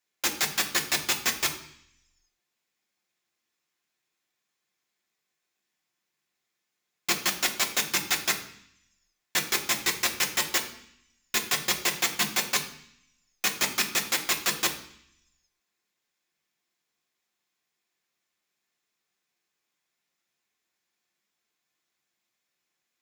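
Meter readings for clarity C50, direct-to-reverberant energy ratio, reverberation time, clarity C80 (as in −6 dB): 11.0 dB, 1.0 dB, 0.65 s, 13.5 dB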